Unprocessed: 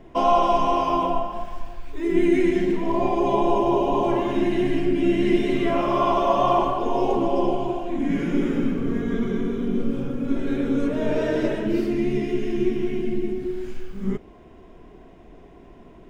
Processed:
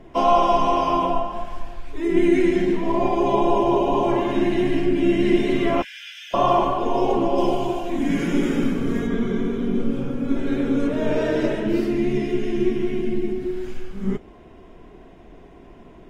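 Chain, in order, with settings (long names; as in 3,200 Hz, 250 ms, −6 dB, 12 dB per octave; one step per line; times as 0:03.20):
0:05.82–0:06.34: Chebyshev high-pass filter 1,500 Hz, order 10
0:07.38–0:09.07: high-shelf EQ 4,200 Hz +11.5 dB
level +1.5 dB
AAC 48 kbit/s 48,000 Hz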